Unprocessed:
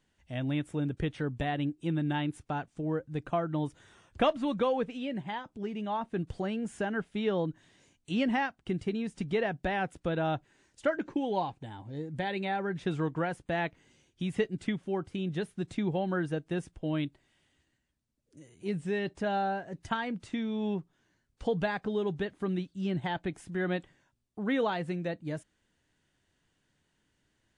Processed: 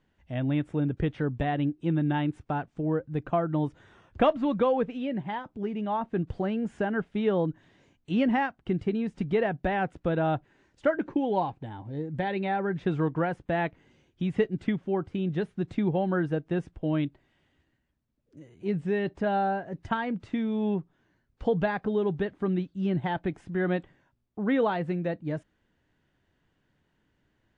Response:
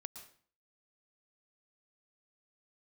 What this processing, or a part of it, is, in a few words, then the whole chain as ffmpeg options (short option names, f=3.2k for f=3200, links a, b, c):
through cloth: -af "lowpass=7.5k,highshelf=f=3.8k:g=-16,volume=4.5dB"